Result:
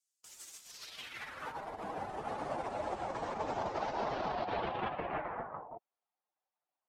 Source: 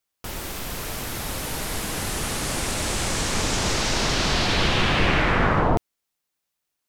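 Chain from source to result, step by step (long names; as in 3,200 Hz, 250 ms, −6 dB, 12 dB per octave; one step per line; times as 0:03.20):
expanding power law on the bin magnitudes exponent 1.7
band-pass filter sweep 7,200 Hz → 770 Hz, 0:00.62–0:01.69
compressor whose output falls as the input rises −36 dBFS, ratio −0.5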